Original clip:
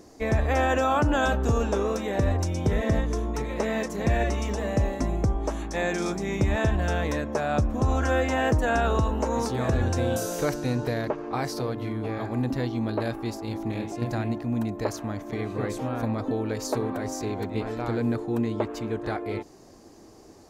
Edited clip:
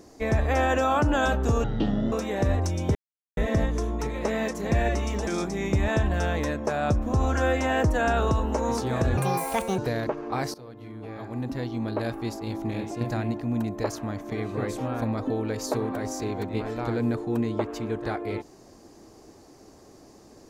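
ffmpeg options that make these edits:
ffmpeg -i in.wav -filter_complex "[0:a]asplit=8[link_01][link_02][link_03][link_04][link_05][link_06][link_07][link_08];[link_01]atrim=end=1.644[link_09];[link_02]atrim=start=1.64:end=1.89,asetpts=PTS-STARTPTS,asetrate=22932,aresample=44100[link_10];[link_03]atrim=start=1.886:end=2.72,asetpts=PTS-STARTPTS,afade=type=out:start_time=0.83:duration=0.004:curve=hsin,apad=pad_dur=0.42[link_11];[link_04]atrim=start=2.72:end=4.622,asetpts=PTS-STARTPTS,afade=type=in:duration=0.004:curve=hsin[link_12];[link_05]atrim=start=5.948:end=9.854[link_13];[link_06]atrim=start=9.85:end=10.79,asetpts=PTS-STARTPTS,asetrate=67914,aresample=44100,atrim=end_sample=26918,asetpts=PTS-STARTPTS[link_14];[link_07]atrim=start=10.786:end=11.55,asetpts=PTS-STARTPTS,afade=type=out:start_time=0.76:duration=0.004:curve=hsin:silence=0.125893[link_15];[link_08]atrim=start=11.55,asetpts=PTS-STARTPTS,afade=type=in:duration=1.65:silence=0.125893[link_16];[link_09][link_10]acrossfade=duration=0.004:curve1=hsin:curve2=hsin[link_17];[link_11][link_12]concat=n=2:v=0:a=1[link_18];[link_17][link_18]acrossfade=duration=0.004:curve1=hsin:curve2=hsin[link_19];[link_19][link_13]acrossfade=duration=0.004:curve1=hsin:curve2=hsin[link_20];[link_20][link_14]acrossfade=duration=0.004:curve1=hsin:curve2=hsin[link_21];[link_15][link_16]concat=n=2:v=0:a=1[link_22];[link_21][link_22]acrossfade=duration=0.004:curve1=hsin:curve2=hsin" out.wav

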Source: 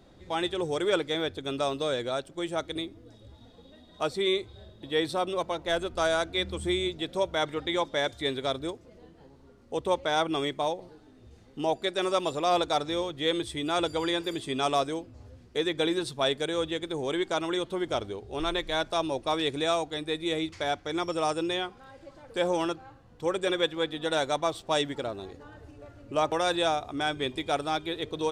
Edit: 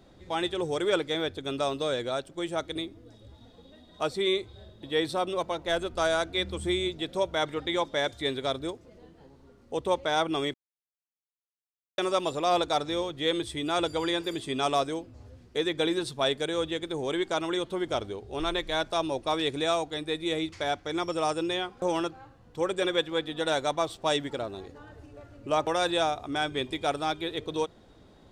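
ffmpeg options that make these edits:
ffmpeg -i in.wav -filter_complex "[0:a]asplit=4[link_01][link_02][link_03][link_04];[link_01]atrim=end=10.54,asetpts=PTS-STARTPTS,afade=type=out:start_time=10.536:duration=0.004:curve=hsin[link_05];[link_02]atrim=start=10.54:end=11.98,asetpts=PTS-STARTPTS,volume=0[link_06];[link_03]atrim=start=11.98:end=21.822,asetpts=PTS-STARTPTS,afade=type=in:duration=0.004:curve=hsin[link_07];[link_04]atrim=start=22.468[link_08];[link_05][link_06][link_07]concat=n=3:v=0:a=1[link_09];[link_09][link_08]acrossfade=duration=0.004:curve1=hsin:curve2=hsin" out.wav

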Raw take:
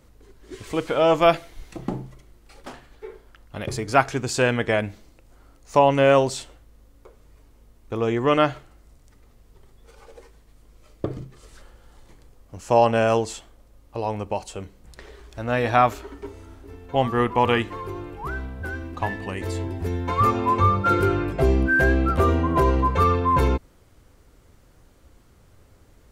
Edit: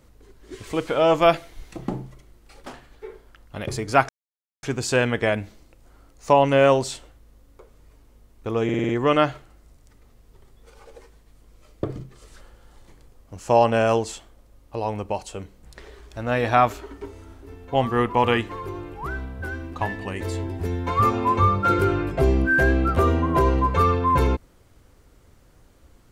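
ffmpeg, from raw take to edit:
ffmpeg -i in.wav -filter_complex "[0:a]asplit=7[link_01][link_02][link_03][link_04][link_05][link_06][link_07];[link_01]atrim=end=4.09,asetpts=PTS-STARTPTS,afade=type=out:start_time=4.086:duration=0.004:curve=hsin,apad=pad_dur=0.54[link_08];[link_02]atrim=start=4.09:end=8.152,asetpts=PTS-STARTPTS,afade=type=in:duration=0.004:curve=hsin[link_09];[link_03]atrim=start=8.098:end=8.152[link_10];[link_04]atrim=start=8.098:end=8.152[link_11];[link_05]atrim=start=8.098:end=8.152[link_12];[link_06]atrim=start=8.098:end=8.152[link_13];[link_07]atrim=start=8.098[link_14];[link_08][link_09]concat=n=2:v=0:a=1[link_15];[link_15][link_10]acrossfade=duration=0.004:curve1=hsin:curve2=hsin[link_16];[link_16][link_11]acrossfade=duration=0.004:curve1=hsin:curve2=hsin[link_17];[link_17][link_12]acrossfade=duration=0.004:curve1=hsin:curve2=hsin[link_18];[link_18][link_13]acrossfade=duration=0.004:curve1=hsin:curve2=hsin[link_19];[link_19][link_14]acrossfade=duration=0.004:curve1=hsin:curve2=hsin" out.wav

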